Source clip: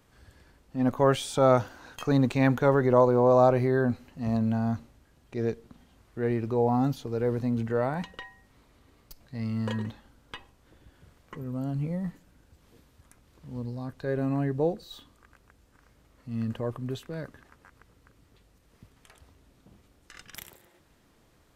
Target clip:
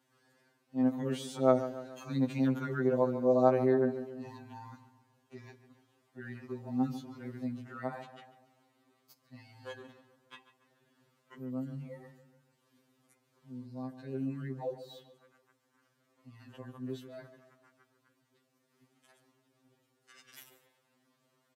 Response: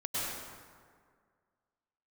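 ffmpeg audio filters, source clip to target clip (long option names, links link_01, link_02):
-filter_complex "[0:a]highpass=frequency=160:width=0.5412,highpass=frequency=160:width=1.3066,asplit=2[link_01][link_02];[link_02]adelay=143,lowpass=frequency=2700:poles=1,volume=-12.5dB,asplit=2[link_03][link_04];[link_04]adelay=143,lowpass=frequency=2700:poles=1,volume=0.51,asplit=2[link_05][link_06];[link_06]adelay=143,lowpass=frequency=2700:poles=1,volume=0.51,asplit=2[link_07][link_08];[link_08]adelay=143,lowpass=frequency=2700:poles=1,volume=0.51,asplit=2[link_09][link_10];[link_10]adelay=143,lowpass=frequency=2700:poles=1,volume=0.51[link_11];[link_03][link_05][link_07][link_09][link_11]amix=inputs=5:normalize=0[link_12];[link_01][link_12]amix=inputs=2:normalize=0,afftfilt=real='re*2.45*eq(mod(b,6),0)':imag='im*2.45*eq(mod(b,6),0)':win_size=2048:overlap=0.75,volume=-7dB"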